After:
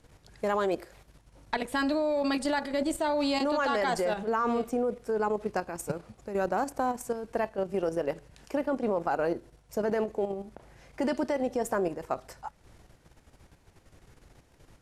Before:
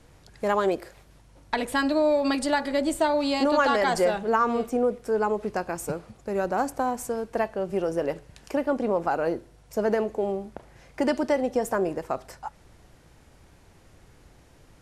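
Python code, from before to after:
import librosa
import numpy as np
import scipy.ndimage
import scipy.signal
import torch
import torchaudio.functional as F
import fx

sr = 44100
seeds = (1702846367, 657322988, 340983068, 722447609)

y = fx.level_steps(x, sr, step_db=9)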